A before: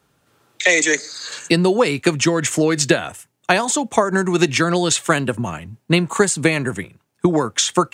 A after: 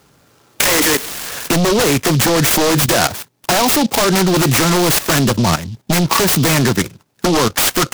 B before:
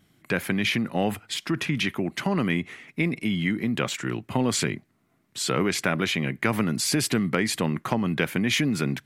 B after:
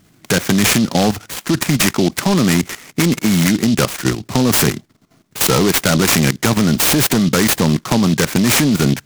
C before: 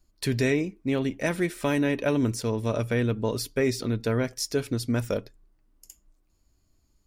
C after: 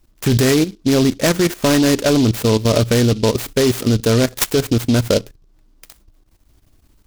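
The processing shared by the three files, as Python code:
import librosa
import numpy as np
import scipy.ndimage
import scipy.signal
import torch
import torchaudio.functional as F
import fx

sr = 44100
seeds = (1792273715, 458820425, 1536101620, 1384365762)

p1 = fx.fold_sine(x, sr, drive_db=16, ceiling_db=-1.0)
p2 = x + F.gain(torch.from_numpy(p1), -5.0).numpy()
p3 = fx.level_steps(p2, sr, step_db=13)
y = fx.noise_mod_delay(p3, sr, seeds[0], noise_hz=4000.0, depth_ms=0.084)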